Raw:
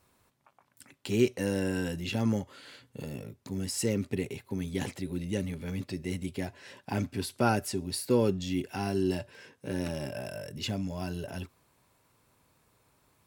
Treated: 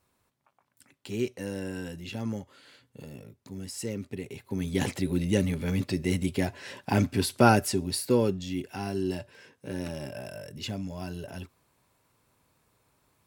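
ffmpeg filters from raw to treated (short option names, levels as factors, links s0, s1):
-af "volume=2.24,afade=t=in:st=4.24:d=0.73:silence=0.251189,afade=t=out:st=7.43:d=0.98:silence=0.375837"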